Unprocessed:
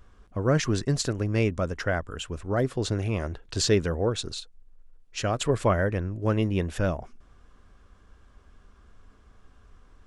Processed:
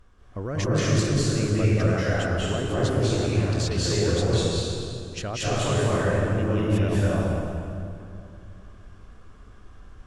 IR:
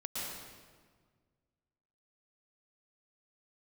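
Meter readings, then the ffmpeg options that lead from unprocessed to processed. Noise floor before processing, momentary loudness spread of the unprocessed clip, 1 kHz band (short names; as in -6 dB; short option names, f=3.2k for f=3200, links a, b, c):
-57 dBFS, 11 LU, +1.5 dB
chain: -filter_complex "[0:a]alimiter=limit=-21.5dB:level=0:latency=1:release=22[a];[1:a]atrim=start_sample=2205,asetrate=25578,aresample=44100[b];[a][b]afir=irnorm=-1:irlink=0"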